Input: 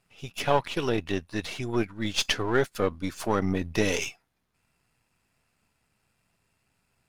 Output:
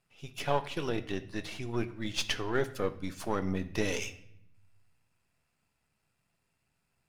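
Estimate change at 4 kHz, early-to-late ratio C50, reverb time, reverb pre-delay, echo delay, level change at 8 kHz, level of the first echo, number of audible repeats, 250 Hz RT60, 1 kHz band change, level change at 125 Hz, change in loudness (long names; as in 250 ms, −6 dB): −6.0 dB, 15.0 dB, 0.70 s, 6 ms, no echo audible, −6.5 dB, no echo audible, no echo audible, 1.2 s, −6.0 dB, −5.0 dB, −6.0 dB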